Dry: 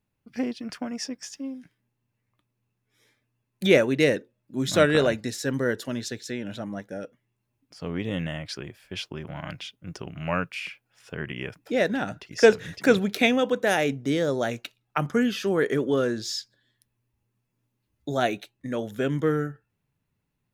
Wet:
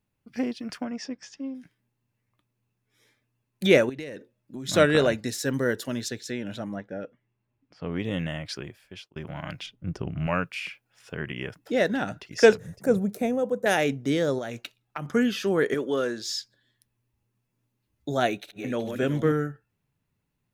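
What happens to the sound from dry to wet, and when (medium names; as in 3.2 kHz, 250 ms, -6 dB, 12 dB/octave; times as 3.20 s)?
0.84–1.55 s: distance through air 120 m
3.89–4.69 s: compression 16:1, threshold -32 dBFS
5.25–6.09 s: treble shelf 10 kHz +7 dB
6.76–7.92 s: low-pass 2.9 kHz
8.63–9.16 s: fade out
9.66–10.27 s: tilt EQ -2.5 dB/octave
11.42–12.00 s: band-stop 2.4 kHz
12.57–13.66 s: FFT filter 210 Hz 0 dB, 300 Hz -9 dB, 530 Hz -1 dB, 3.3 kHz -23 dB, 8.7 kHz -3 dB
14.38–15.13 s: compression, threshold -29 dBFS
15.74–16.29 s: high-pass 390 Hz 6 dB/octave
18.28–19.32 s: backward echo that repeats 187 ms, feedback 57%, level -6 dB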